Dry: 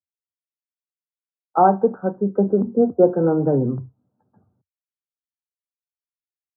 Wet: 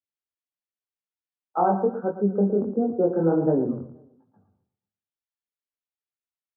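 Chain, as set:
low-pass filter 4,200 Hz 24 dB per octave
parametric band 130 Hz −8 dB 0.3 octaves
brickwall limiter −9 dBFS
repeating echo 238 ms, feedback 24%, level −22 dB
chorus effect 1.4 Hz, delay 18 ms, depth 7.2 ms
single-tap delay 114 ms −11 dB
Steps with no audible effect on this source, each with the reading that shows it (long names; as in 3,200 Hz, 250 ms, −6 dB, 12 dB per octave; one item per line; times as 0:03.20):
low-pass filter 4,200 Hz: nothing at its input above 1,400 Hz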